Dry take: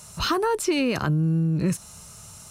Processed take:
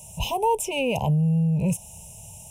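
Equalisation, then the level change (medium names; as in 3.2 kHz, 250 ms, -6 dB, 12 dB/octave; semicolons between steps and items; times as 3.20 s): elliptic band-stop 940–2600 Hz, stop band 60 dB; dynamic bell 950 Hz, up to +4 dB, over -38 dBFS, Q 0.83; static phaser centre 1.2 kHz, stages 6; +4.5 dB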